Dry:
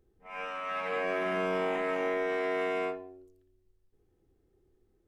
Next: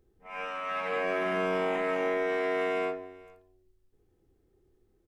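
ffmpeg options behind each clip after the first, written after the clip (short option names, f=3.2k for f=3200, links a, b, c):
-af "aecho=1:1:438:0.0708,volume=1.5dB"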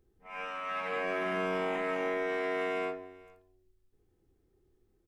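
-af "equalizer=f=540:w=1.5:g=-2.5,volume=-2dB"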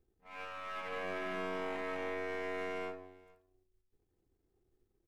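-af "aeval=exprs='if(lt(val(0),0),0.447*val(0),val(0))':c=same,volume=-4dB"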